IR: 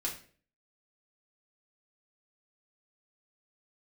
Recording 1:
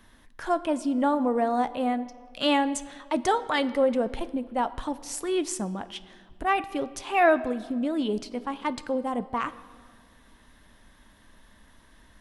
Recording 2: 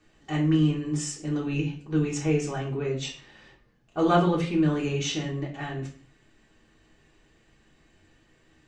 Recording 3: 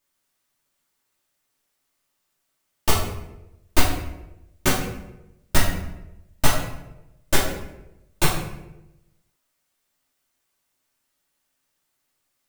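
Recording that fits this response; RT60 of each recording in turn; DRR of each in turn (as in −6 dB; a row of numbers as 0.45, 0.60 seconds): 2; 2.0, 0.45, 0.95 seconds; 13.5, −4.0, −6.5 decibels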